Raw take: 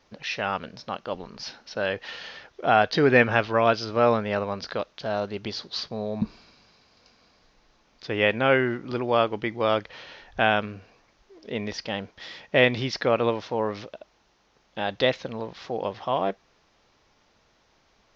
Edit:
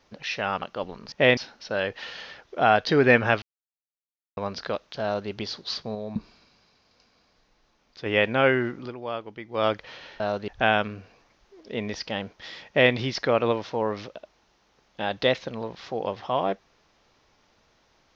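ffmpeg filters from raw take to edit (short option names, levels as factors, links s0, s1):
-filter_complex "[0:a]asplit=12[s0][s1][s2][s3][s4][s5][s6][s7][s8][s9][s10][s11];[s0]atrim=end=0.622[s12];[s1]atrim=start=0.928:end=1.432[s13];[s2]atrim=start=12.458:end=12.712[s14];[s3]atrim=start=1.428:end=3.48,asetpts=PTS-STARTPTS,afade=t=out:st=2.048:d=0.004:c=hsin[s15];[s4]atrim=start=3.48:end=4.43,asetpts=PTS-STARTPTS,volume=0[s16];[s5]atrim=start=4.43:end=6.012,asetpts=PTS-STARTPTS,afade=t=in:d=0.004:c=hsin[s17];[s6]atrim=start=6.008:end=8.122,asetpts=PTS-STARTPTS,volume=0.631[s18];[s7]atrim=start=8.118:end=8.98,asetpts=PTS-STARTPTS,afade=t=out:st=0.702:d=0.16:silence=0.298538[s19];[s8]atrim=start=8.98:end=9.55,asetpts=PTS-STARTPTS,volume=0.299[s20];[s9]atrim=start=9.55:end=10.262,asetpts=PTS-STARTPTS,afade=t=in:d=0.16:silence=0.298538[s21];[s10]atrim=start=5.078:end=5.362[s22];[s11]atrim=start=10.258[s23];[s12][s13]acrossfade=d=0.004:c1=hsin:c2=hsin[s24];[s24][s14]acrossfade=d=0.004:c1=hsin:c2=hsin[s25];[s15][s16][s17]concat=n=3:v=0:a=1[s26];[s25][s26]acrossfade=d=0.004:c1=hsin:c2=hsin[s27];[s27][s18]acrossfade=d=0.004:c1=hsin:c2=hsin[s28];[s19][s20][s21]concat=n=3:v=0:a=1[s29];[s28][s29]acrossfade=d=0.004:c1=hsin:c2=hsin[s30];[s30][s22]acrossfade=d=0.004:c1=hsin:c2=hsin[s31];[s31][s23]acrossfade=d=0.004:c1=hsin:c2=hsin"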